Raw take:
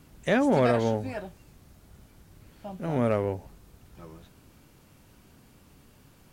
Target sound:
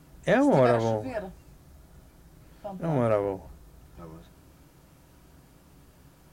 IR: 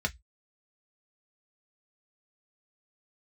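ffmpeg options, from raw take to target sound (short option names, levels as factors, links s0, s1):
-filter_complex "[0:a]asplit=2[s0][s1];[1:a]atrim=start_sample=2205,highshelf=f=4400:g=-9.5[s2];[s1][s2]afir=irnorm=-1:irlink=0,volume=0.211[s3];[s0][s3]amix=inputs=2:normalize=0"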